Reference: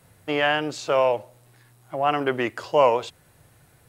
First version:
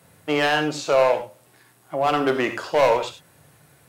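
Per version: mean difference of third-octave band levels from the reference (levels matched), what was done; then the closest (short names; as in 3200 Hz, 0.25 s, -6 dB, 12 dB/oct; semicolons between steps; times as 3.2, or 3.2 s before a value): 4.5 dB: HPF 110 Hz; overloaded stage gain 16 dB; non-linear reverb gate 0.12 s flat, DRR 6 dB; gain +2.5 dB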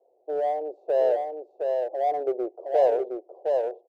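11.5 dB: elliptic band-pass 370–740 Hz, stop band 50 dB; in parallel at -8 dB: overloaded stage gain 28 dB; on the sum: echo 0.715 s -4 dB; gain -2 dB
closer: first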